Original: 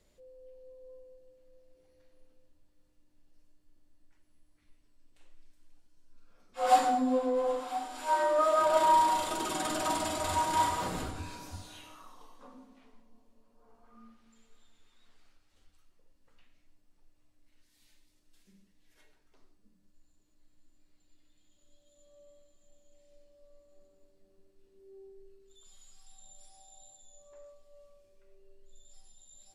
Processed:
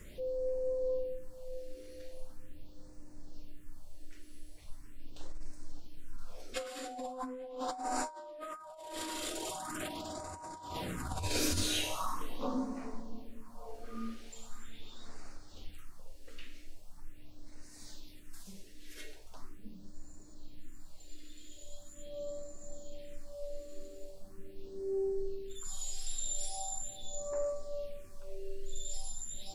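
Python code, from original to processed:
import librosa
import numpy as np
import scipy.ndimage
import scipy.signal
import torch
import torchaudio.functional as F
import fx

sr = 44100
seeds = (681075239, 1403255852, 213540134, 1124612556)

y = fx.phaser_stages(x, sr, stages=4, low_hz=140.0, high_hz=3300.0, hz=0.41, feedback_pct=10)
y = fx.over_compress(y, sr, threshold_db=-48.0, ratio=-1.0)
y = F.gain(torch.from_numpy(y), 11.0).numpy()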